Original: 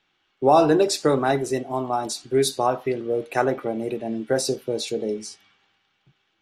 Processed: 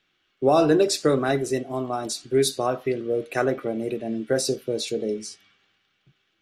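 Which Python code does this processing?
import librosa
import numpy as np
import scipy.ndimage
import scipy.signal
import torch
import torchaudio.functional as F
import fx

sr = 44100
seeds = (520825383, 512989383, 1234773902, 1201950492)

y = fx.peak_eq(x, sr, hz=880.0, db=-11.0, octaves=0.4)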